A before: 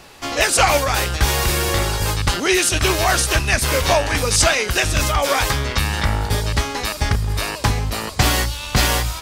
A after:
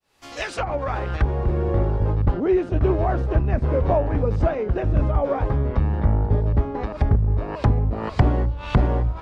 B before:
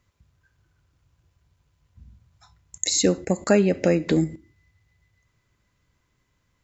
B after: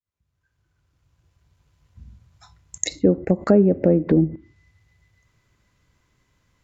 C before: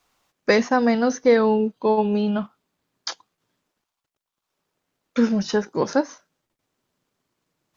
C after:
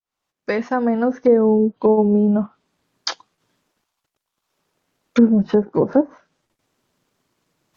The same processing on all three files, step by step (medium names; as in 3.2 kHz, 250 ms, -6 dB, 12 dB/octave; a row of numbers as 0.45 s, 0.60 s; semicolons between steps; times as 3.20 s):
fade-in on the opening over 1.78 s; low-pass that closes with the level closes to 550 Hz, closed at -18.5 dBFS; peak normalisation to -3 dBFS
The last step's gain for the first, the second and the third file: +1.5 dB, +4.5 dB, +6.5 dB